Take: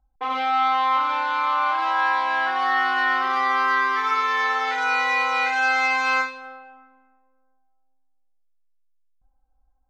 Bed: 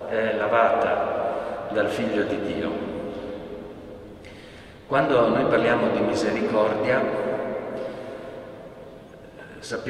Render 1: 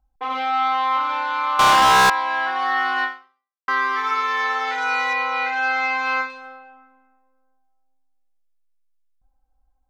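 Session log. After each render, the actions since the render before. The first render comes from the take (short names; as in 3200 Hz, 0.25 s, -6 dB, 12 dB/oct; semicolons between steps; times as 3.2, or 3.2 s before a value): 1.59–2.1 sample leveller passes 5; 3.04–3.68 fade out exponential; 5.13–6.3 air absorption 120 m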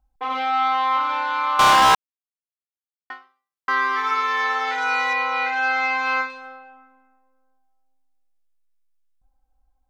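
1.95–3.1 mute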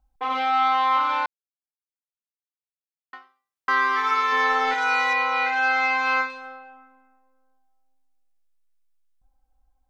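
1.26–3.13 mute; 4.32–4.74 low shelf 480 Hz +10 dB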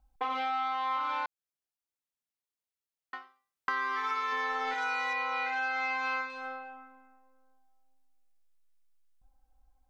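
compressor 6:1, threshold -30 dBFS, peak gain reduction 12 dB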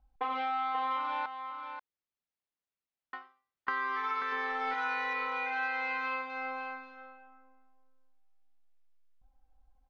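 air absorption 180 m; echo 0.536 s -8.5 dB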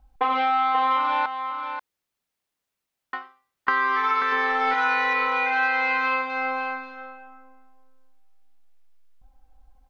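gain +11 dB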